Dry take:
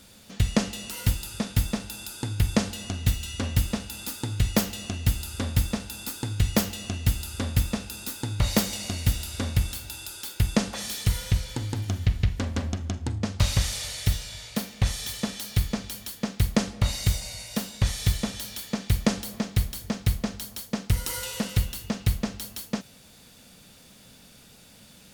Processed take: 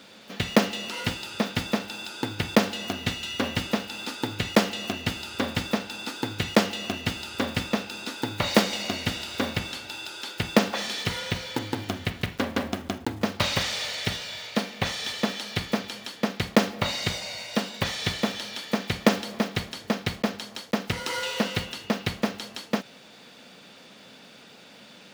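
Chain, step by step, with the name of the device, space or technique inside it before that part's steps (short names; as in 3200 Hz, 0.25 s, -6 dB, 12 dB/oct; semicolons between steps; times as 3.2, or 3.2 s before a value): early digital voice recorder (BPF 270–3800 Hz; block floating point 5-bit); gain +7.5 dB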